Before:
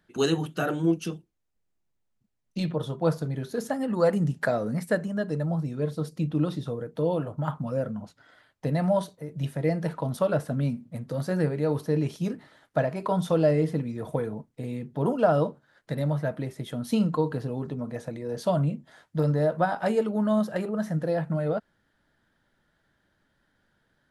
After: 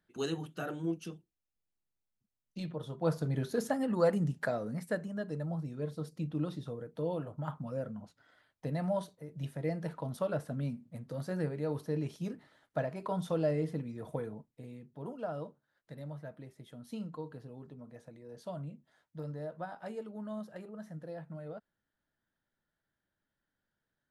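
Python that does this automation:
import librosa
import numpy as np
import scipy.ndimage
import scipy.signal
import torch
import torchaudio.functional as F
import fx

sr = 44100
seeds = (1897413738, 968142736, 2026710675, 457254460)

y = fx.gain(x, sr, db=fx.line((2.82, -11.0), (3.38, -1.0), (4.68, -9.0), (14.27, -9.0), (14.92, -17.0)))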